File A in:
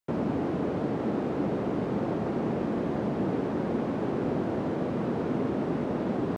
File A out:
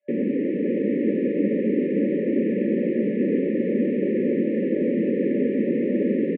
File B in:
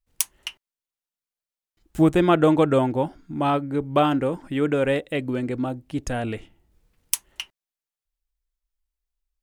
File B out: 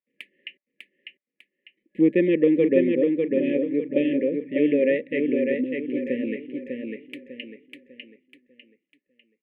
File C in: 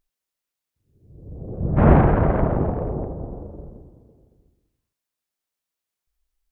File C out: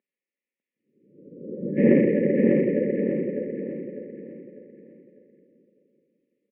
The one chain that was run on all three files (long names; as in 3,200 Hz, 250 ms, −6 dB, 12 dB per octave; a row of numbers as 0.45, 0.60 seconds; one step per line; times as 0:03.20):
brick-wall band-stop 590–1,700 Hz
harmonic generator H 5 −36 dB, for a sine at −1 dBFS
elliptic band-pass filter 210–2,400 Hz, stop band 40 dB
on a send: repeating echo 599 ms, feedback 36%, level −4 dB
on the sum: loudness normalisation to −23 LKFS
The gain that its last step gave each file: +6.0, +0.5, +1.5 decibels